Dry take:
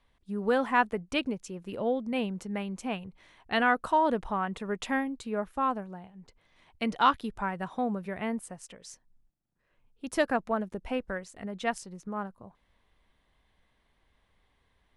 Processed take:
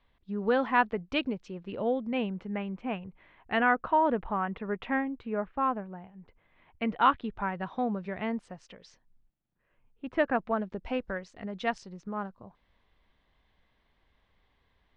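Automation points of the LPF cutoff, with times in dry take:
LPF 24 dB/oct
1.53 s 4300 Hz
2.75 s 2700 Hz
6.92 s 2700 Hz
7.89 s 4900 Hz
8.62 s 4900 Hz
10.16 s 2600 Hz
10.87 s 5300 Hz

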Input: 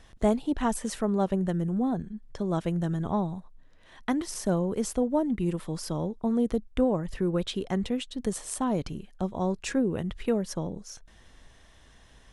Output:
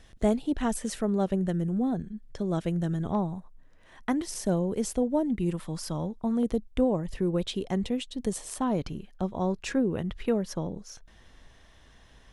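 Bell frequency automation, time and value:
bell -5.5 dB 0.76 oct
1000 Hz
from 3.15 s 3800 Hz
from 4.16 s 1200 Hz
from 5.5 s 410 Hz
from 6.43 s 1400 Hz
from 8.48 s 8600 Hz

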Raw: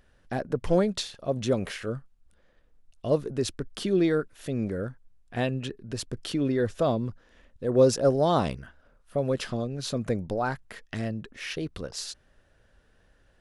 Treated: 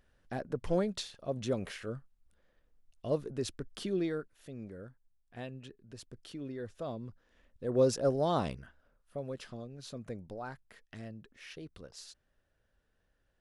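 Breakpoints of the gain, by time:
3.83 s -7.5 dB
4.53 s -15.5 dB
6.78 s -15.5 dB
7.67 s -7 dB
8.61 s -7 dB
9.36 s -14 dB

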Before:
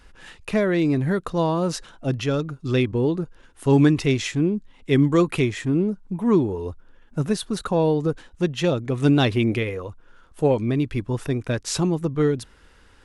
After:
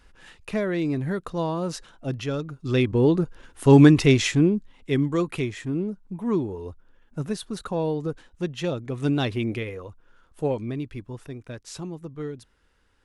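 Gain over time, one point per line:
2.47 s -5 dB
3.12 s +3.5 dB
4.34 s +3.5 dB
5.05 s -6 dB
10.47 s -6 dB
11.32 s -13 dB

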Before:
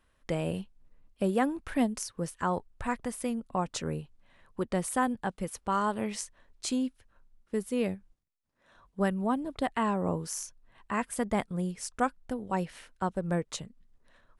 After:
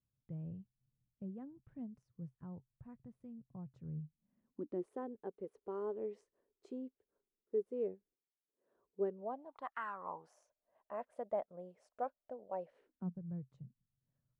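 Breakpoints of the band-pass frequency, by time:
band-pass, Q 6.2
3.92 s 130 Hz
4.94 s 410 Hz
9.08 s 410 Hz
9.83 s 1500 Hz
10.37 s 610 Hz
12.68 s 610 Hz
13.22 s 130 Hz

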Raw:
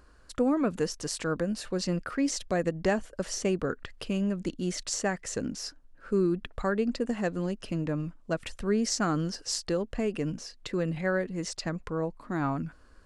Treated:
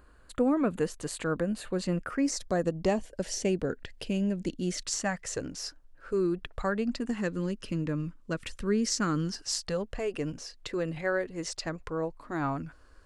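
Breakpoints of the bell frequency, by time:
bell -14 dB 0.39 oct
1.88 s 5500 Hz
3.13 s 1200 Hz
4.64 s 1200 Hz
5.33 s 220 Hz
6.5 s 220 Hz
7.24 s 720 Hz
9.13 s 720 Hz
10.12 s 200 Hz

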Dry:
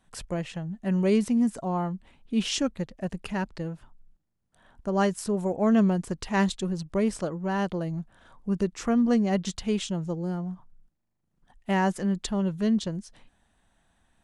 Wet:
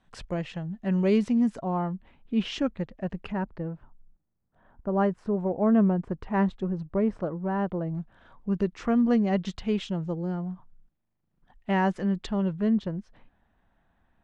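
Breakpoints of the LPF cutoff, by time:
4400 Hz
from 1.59 s 2700 Hz
from 3.32 s 1400 Hz
from 7.95 s 3300 Hz
from 12.53 s 2000 Hz

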